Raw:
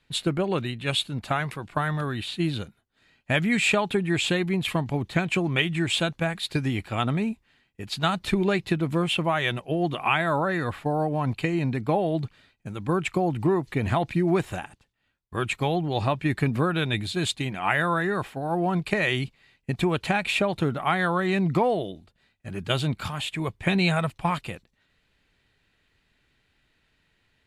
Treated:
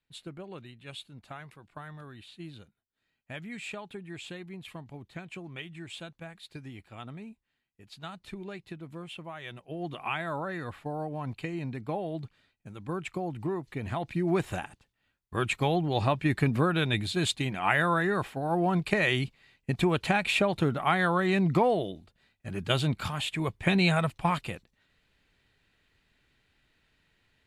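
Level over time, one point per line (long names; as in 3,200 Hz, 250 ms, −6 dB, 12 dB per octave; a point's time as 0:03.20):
0:09.39 −17.5 dB
0:09.91 −9.5 dB
0:13.91 −9.5 dB
0:14.53 −1.5 dB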